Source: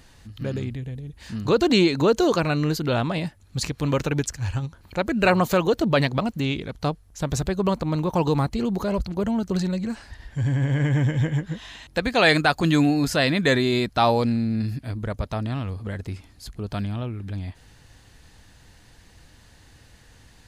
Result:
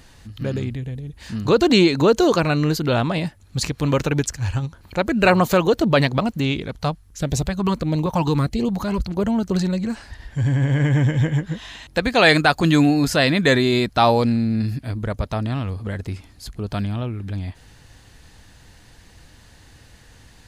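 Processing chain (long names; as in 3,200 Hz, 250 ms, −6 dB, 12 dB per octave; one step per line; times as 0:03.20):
0:06.81–0:09.06: auto-filter notch saw up 1.6 Hz 290–1,700 Hz
level +3.5 dB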